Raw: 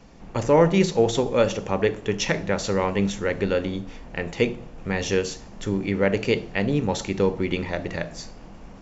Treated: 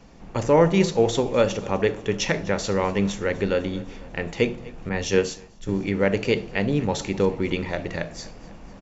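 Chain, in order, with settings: feedback delay 249 ms, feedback 59%, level -21 dB; 4.89–5.69 s: three bands expanded up and down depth 100%

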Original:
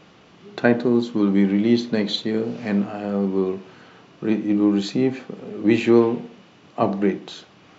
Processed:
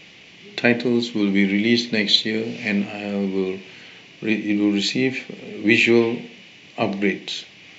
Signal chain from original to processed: resonant high shelf 1.7 kHz +8.5 dB, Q 3; trim -1 dB

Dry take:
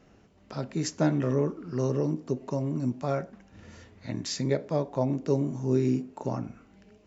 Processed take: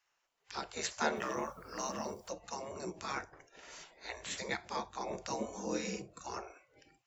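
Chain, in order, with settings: spectral gate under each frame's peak -15 dB weak; 5.36–6.02 s: comb 4 ms, depth 50%; spectral noise reduction 16 dB; 1.15–2.29 s: added noise white -80 dBFS; treble shelf 5.4 kHz +7 dB; trim +3 dB

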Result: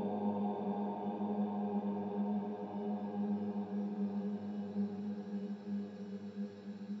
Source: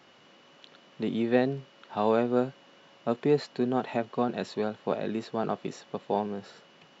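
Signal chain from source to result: reverberation, pre-delay 76 ms; Paulstretch 24×, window 0.50 s, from 6.31 s; trim +10.5 dB

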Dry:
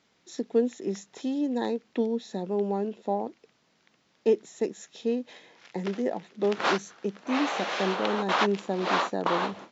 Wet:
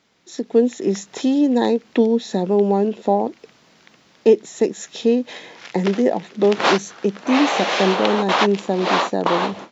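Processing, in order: in parallel at -3 dB: compression, threshold -36 dBFS, peak gain reduction 17 dB; on the sum: dynamic bell 1.4 kHz, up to -4 dB, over -41 dBFS, Q 2; level rider gain up to 10 dB

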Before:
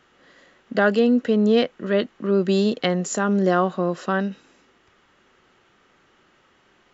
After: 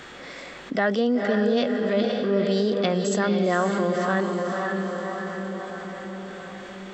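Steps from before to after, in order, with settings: echo that smears into a reverb 507 ms, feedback 46%, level -5.5 dB; formant shift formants +2 st; level flattener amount 50%; trim -5.5 dB

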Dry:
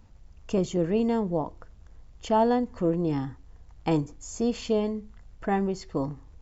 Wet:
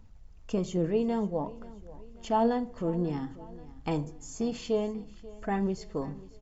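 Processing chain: flange 0.53 Hz, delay 0 ms, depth 7.1 ms, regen +61%; feedback delay 536 ms, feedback 50%, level -19.5 dB; on a send at -15 dB: reverberation RT60 0.55 s, pre-delay 5 ms

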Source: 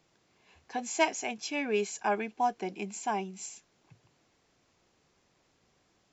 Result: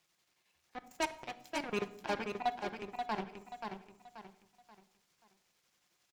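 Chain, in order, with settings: zero-crossing glitches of -31.5 dBFS; low-pass 1.9 kHz 6 dB/octave; hum notches 60/120/180/240/300/360/420 Hz; in parallel at -1 dB: compression, threshold -38 dBFS, peak gain reduction 15.5 dB; on the sum: transient shaper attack -6 dB, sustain -1 dB; square tremolo 11 Hz, depth 60%, duty 65%; Chebyshev shaper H 3 -11 dB, 5 -7 dB, 7 -9 dB, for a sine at -17.5 dBFS; feedback delay 532 ms, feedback 35%, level -5.5 dB; simulated room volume 2300 m³, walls furnished, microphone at 0.9 m; trim -4.5 dB

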